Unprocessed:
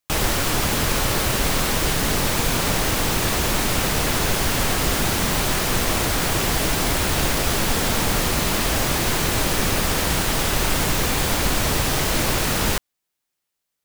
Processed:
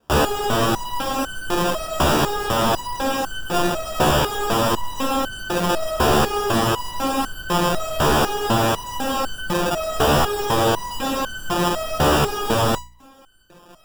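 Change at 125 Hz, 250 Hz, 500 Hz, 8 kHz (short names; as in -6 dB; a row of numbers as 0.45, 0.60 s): -1.5, +1.5, +5.0, -7.5 dB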